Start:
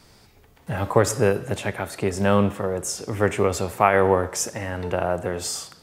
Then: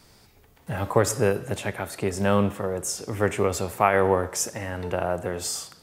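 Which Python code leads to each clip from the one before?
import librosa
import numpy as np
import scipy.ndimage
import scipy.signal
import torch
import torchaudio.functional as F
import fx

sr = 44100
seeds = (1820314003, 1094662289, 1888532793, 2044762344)

y = fx.high_shelf(x, sr, hz=9700.0, db=5.5)
y = y * 10.0 ** (-2.5 / 20.0)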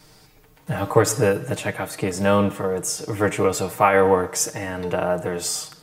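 y = x + 0.76 * np.pad(x, (int(6.5 * sr / 1000.0), 0))[:len(x)]
y = y * 10.0 ** (2.0 / 20.0)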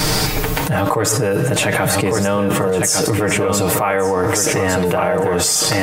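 y = x + 10.0 ** (-9.0 / 20.0) * np.pad(x, (int(1154 * sr / 1000.0), 0))[:len(x)]
y = fx.env_flatten(y, sr, amount_pct=100)
y = y * 10.0 ** (-5.5 / 20.0)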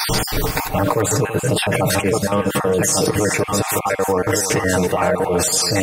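y = fx.spec_dropout(x, sr, seeds[0], share_pct=36)
y = y + 10.0 ** (-11.0 / 20.0) * np.pad(y, (int(332 * sr / 1000.0), 0))[:len(y)]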